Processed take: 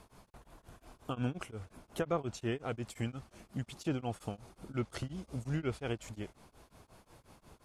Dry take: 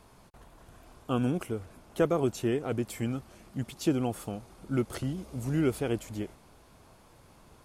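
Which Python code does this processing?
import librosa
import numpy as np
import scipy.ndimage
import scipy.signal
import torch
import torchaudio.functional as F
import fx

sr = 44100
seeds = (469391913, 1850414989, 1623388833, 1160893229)

y = fx.dynamic_eq(x, sr, hz=320.0, q=0.74, threshold_db=-40.0, ratio=4.0, max_db=-7)
y = fx.env_lowpass_down(y, sr, base_hz=1700.0, full_db=-22.0)
y = y * np.abs(np.cos(np.pi * 5.6 * np.arange(len(y)) / sr))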